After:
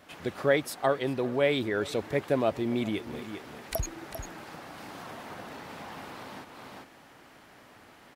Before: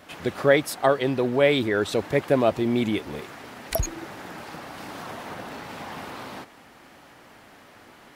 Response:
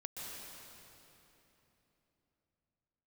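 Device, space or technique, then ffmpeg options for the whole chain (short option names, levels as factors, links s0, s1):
ducked delay: -filter_complex "[0:a]asplit=3[s0][s1][s2];[s1]adelay=397,volume=0.794[s3];[s2]apad=whole_len=377090[s4];[s3][s4]sidechaincompress=threshold=0.00708:ratio=4:attack=16:release=320[s5];[s0][s5]amix=inputs=2:normalize=0,volume=0.501"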